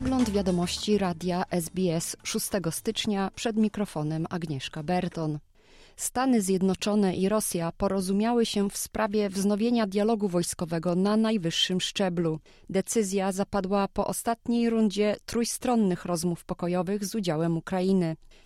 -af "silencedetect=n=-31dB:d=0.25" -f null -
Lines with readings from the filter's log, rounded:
silence_start: 5.37
silence_end: 6.00 | silence_duration: 0.63
silence_start: 12.37
silence_end: 12.70 | silence_duration: 0.33
silence_start: 18.14
silence_end: 18.45 | silence_duration: 0.31